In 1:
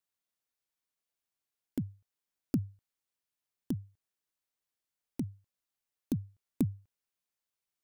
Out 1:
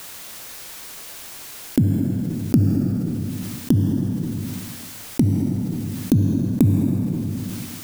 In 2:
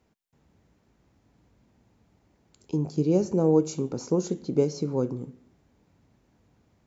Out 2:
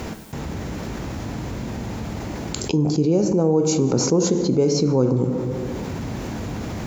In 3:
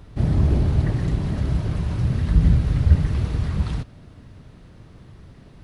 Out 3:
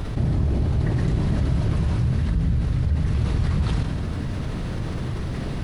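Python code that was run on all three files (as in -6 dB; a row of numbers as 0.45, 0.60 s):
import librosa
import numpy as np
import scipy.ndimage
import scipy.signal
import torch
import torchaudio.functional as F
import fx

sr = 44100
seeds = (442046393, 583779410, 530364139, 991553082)

y = fx.rider(x, sr, range_db=10, speed_s=0.5)
y = fx.rev_plate(y, sr, seeds[0], rt60_s=1.3, hf_ratio=0.75, predelay_ms=0, drr_db=10.5)
y = fx.env_flatten(y, sr, amount_pct=70)
y = y * 10.0 ** (-22 / 20.0) / np.sqrt(np.mean(np.square(y)))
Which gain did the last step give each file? +12.0, +2.0, -7.0 dB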